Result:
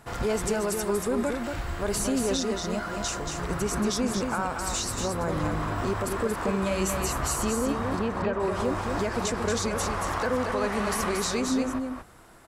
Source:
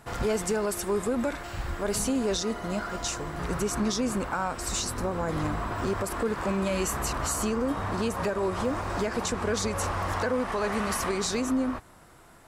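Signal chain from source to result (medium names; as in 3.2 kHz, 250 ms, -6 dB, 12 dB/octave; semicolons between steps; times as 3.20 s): 7.99–8.40 s: low-pass 2.5 kHz 12 dB/octave; on a send: delay 230 ms -5 dB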